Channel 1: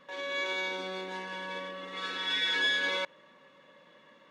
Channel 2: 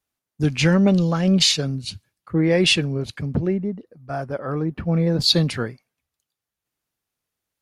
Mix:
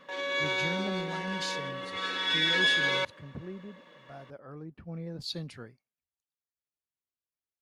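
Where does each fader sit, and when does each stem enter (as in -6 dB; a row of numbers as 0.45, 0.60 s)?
+3.0, -19.5 dB; 0.00, 0.00 s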